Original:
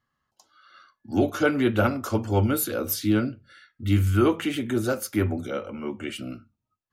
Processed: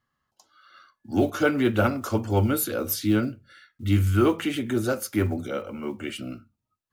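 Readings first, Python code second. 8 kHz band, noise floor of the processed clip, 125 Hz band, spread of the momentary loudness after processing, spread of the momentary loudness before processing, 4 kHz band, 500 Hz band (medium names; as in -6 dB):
0.0 dB, -82 dBFS, 0.0 dB, 12 LU, 12 LU, 0.0 dB, 0.0 dB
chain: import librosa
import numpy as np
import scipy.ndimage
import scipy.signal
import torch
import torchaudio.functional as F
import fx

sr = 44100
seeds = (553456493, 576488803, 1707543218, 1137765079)

y = fx.block_float(x, sr, bits=7)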